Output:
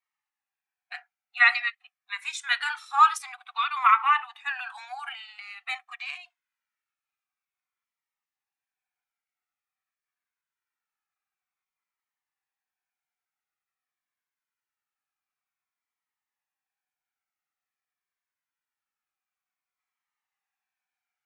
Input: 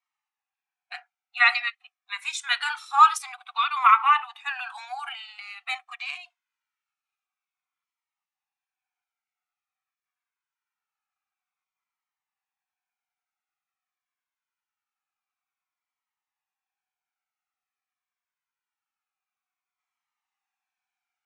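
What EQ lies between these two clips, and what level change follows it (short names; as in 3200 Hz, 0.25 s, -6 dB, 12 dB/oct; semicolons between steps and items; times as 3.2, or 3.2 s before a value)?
bell 1800 Hz +5.5 dB 0.5 oct; -3.5 dB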